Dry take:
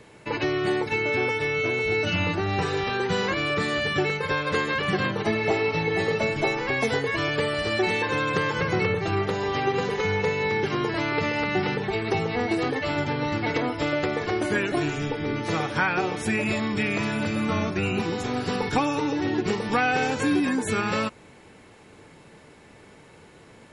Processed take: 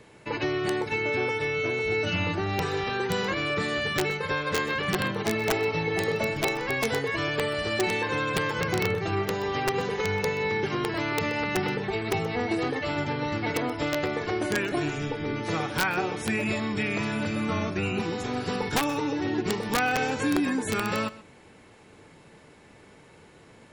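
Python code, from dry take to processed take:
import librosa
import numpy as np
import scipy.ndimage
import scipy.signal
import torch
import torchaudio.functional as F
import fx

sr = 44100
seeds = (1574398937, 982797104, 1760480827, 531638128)

y = (np.mod(10.0 ** (14.0 / 20.0) * x + 1.0, 2.0) - 1.0) / 10.0 ** (14.0 / 20.0)
y = y + 10.0 ** (-18.5 / 20.0) * np.pad(y, (int(127 * sr / 1000.0), 0))[:len(y)]
y = y * librosa.db_to_amplitude(-2.5)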